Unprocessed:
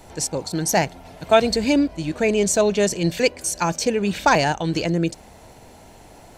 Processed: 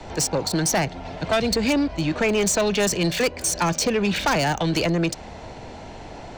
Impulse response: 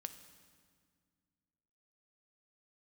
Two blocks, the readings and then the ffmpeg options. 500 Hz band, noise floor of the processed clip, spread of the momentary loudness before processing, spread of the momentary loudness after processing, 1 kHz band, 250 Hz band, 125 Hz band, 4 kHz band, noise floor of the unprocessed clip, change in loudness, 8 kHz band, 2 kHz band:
−3.0 dB, −39 dBFS, 7 LU, 18 LU, −3.0 dB, −1.0 dB, +0.5 dB, +1.5 dB, −46 dBFS, −1.5 dB, +1.0 dB, 0.0 dB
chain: -filter_complex "[0:a]acrossover=split=160|630|1300|6900[link_01][link_02][link_03][link_04][link_05];[link_01]acompressor=threshold=-36dB:ratio=4[link_06];[link_02]acompressor=threshold=-29dB:ratio=4[link_07];[link_03]acompressor=threshold=-32dB:ratio=4[link_08];[link_04]acompressor=threshold=-29dB:ratio=4[link_09];[link_05]acompressor=threshold=-36dB:ratio=4[link_10];[link_06][link_07][link_08][link_09][link_10]amix=inputs=5:normalize=0,acrossover=split=250|6100[link_11][link_12][link_13];[link_13]acrusher=bits=5:mix=0:aa=0.5[link_14];[link_11][link_12][link_14]amix=inputs=3:normalize=0,asoftclip=type=tanh:threshold=-23.5dB,volume=8dB"

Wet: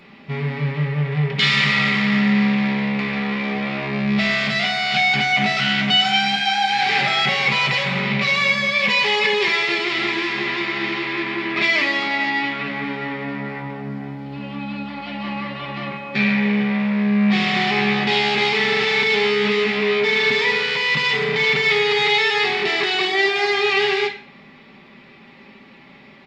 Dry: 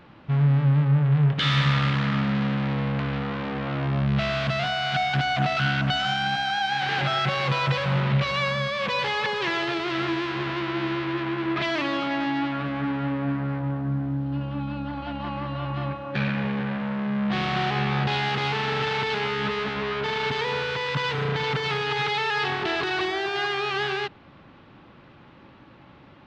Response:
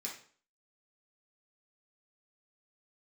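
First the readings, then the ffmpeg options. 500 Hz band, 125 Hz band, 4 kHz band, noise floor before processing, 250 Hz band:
+6.5 dB, −3.0 dB, +9.0 dB, −50 dBFS, +5.5 dB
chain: -filter_complex "[0:a]aecho=1:1:5.1:0.48,asplit=2[link_01][link_02];[link_02]highshelf=frequency=1600:width_type=q:width=3:gain=6[link_03];[1:a]atrim=start_sample=2205[link_04];[link_03][link_04]afir=irnorm=-1:irlink=0,volume=0dB[link_05];[link_01][link_05]amix=inputs=2:normalize=0"

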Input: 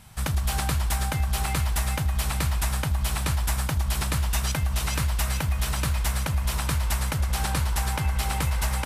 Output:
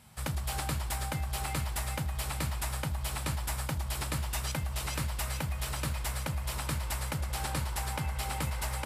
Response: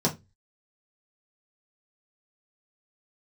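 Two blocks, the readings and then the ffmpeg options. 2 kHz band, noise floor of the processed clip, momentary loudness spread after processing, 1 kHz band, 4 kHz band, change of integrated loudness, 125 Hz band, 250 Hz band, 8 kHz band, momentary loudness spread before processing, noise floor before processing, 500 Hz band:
−6.5 dB, −37 dBFS, 1 LU, −6.0 dB, −6.5 dB, −8.0 dB, −8.5 dB, −6.5 dB, −6.5 dB, 1 LU, −29 dBFS, −4.5 dB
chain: -filter_complex "[0:a]highpass=57,asplit=2[link_01][link_02];[1:a]atrim=start_sample=2205,asetrate=57330,aresample=44100[link_03];[link_02][link_03]afir=irnorm=-1:irlink=0,volume=-21dB[link_04];[link_01][link_04]amix=inputs=2:normalize=0,volume=-7dB"

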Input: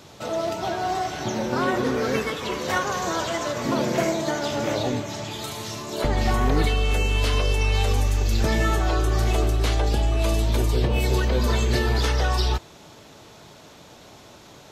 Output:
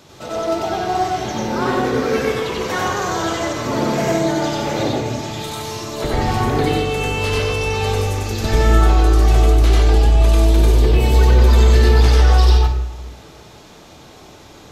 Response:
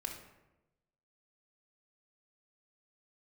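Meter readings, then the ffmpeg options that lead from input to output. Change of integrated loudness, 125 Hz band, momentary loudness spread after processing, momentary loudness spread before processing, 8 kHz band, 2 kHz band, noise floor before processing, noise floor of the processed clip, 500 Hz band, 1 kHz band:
+7.0 dB, +8.5 dB, 12 LU, 6 LU, +3.5 dB, +4.0 dB, −47 dBFS, −42 dBFS, +6.0 dB, +6.0 dB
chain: -filter_complex "[0:a]bandreject=frequency=50:width_type=h:width=6,bandreject=frequency=100:width_type=h:width=6,asplit=2[link_01][link_02];[1:a]atrim=start_sample=2205,lowshelf=frequency=120:gain=5,adelay=93[link_03];[link_02][link_03]afir=irnorm=-1:irlink=0,volume=3dB[link_04];[link_01][link_04]amix=inputs=2:normalize=0"

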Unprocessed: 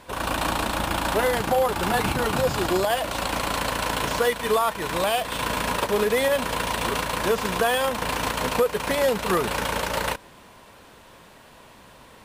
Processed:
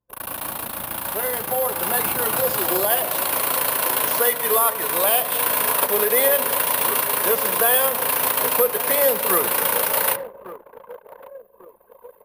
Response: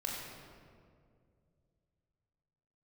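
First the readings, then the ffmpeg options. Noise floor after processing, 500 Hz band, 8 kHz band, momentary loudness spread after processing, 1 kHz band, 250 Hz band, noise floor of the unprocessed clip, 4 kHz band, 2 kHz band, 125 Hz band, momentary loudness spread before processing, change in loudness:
−53 dBFS, +0.5 dB, +10.0 dB, 9 LU, +0.5 dB, −5.0 dB, −49 dBFS, 0.0 dB, +0.5 dB, −9.0 dB, 4 LU, +5.5 dB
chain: -filter_complex "[0:a]highpass=120,asplit=2[link_01][link_02];[link_02]adelay=1147,lowpass=frequency=1300:poles=1,volume=-14dB,asplit=2[link_03][link_04];[link_04]adelay=1147,lowpass=frequency=1300:poles=1,volume=0.52,asplit=2[link_05][link_06];[link_06]adelay=1147,lowpass=frequency=1300:poles=1,volume=0.52,asplit=2[link_07][link_08];[link_08]adelay=1147,lowpass=frequency=1300:poles=1,volume=0.52,asplit=2[link_09][link_10];[link_10]adelay=1147,lowpass=frequency=1300:poles=1,volume=0.52[link_11];[link_01][link_03][link_05][link_07][link_09][link_11]amix=inputs=6:normalize=0,acrossover=split=330[link_12][link_13];[link_12]acrusher=samples=39:mix=1:aa=0.000001[link_14];[link_13]dynaudnorm=framelen=200:gausssize=17:maxgain=14.5dB[link_15];[link_14][link_15]amix=inputs=2:normalize=0,aexciter=amount=13.9:drive=1:freq=10000,asplit=2[link_16][link_17];[1:a]atrim=start_sample=2205,lowshelf=frequency=180:gain=6.5,highshelf=frequency=2600:gain=-8.5[link_18];[link_17][link_18]afir=irnorm=-1:irlink=0,volume=-11dB[link_19];[link_16][link_19]amix=inputs=2:normalize=0,anlmdn=631,volume=-9dB"

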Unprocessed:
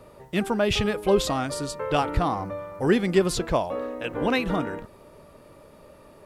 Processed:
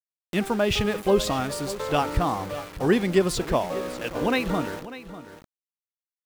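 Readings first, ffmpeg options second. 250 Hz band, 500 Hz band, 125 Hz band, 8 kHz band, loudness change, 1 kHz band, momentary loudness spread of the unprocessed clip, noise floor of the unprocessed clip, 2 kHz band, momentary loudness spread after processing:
0.0 dB, 0.0 dB, 0.0 dB, +0.5 dB, 0.0 dB, 0.0 dB, 8 LU, −51 dBFS, +0.5 dB, 11 LU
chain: -af "aeval=exprs='val(0)*gte(abs(val(0)),0.0188)':channel_layout=same,aecho=1:1:596:0.168,acompressor=mode=upward:threshold=-35dB:ratio=2.5"

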